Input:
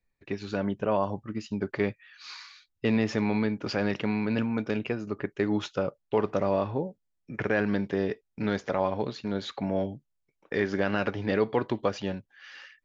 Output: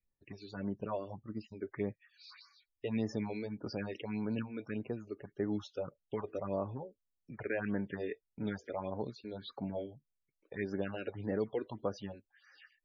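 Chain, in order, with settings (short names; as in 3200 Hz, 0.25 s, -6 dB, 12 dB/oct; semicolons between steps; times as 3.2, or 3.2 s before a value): 6.68–8.5 dynamic EQ 1900 Hz, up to +6 dB, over -44 dBFS, Q 0.83; phaser stages 4, 1.7 Hz, lowest notch 140–3400 Hz; loudest bins only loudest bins 64; gain -8.5 dB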